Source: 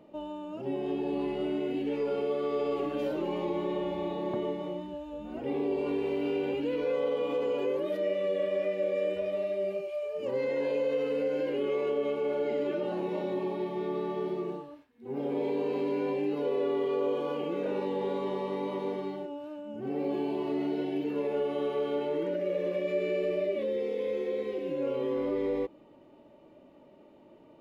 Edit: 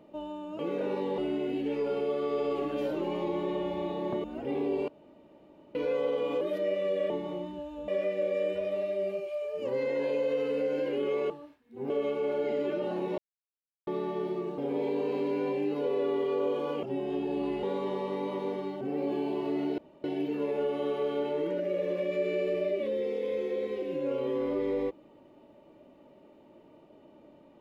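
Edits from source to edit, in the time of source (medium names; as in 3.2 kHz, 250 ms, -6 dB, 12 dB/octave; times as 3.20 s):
0.59–1.39 s: swap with 17.44–18.03 s
4.45–5.23 s: move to 8.49 s
5.87–6.74 s: room tone
7.40–7.80 s: delete
13.19–13.88 s: mute
14.59–15.19 s: move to 11.91 s
19.21–19.83 s: delete
20.80 s: insert room tone 0.26 s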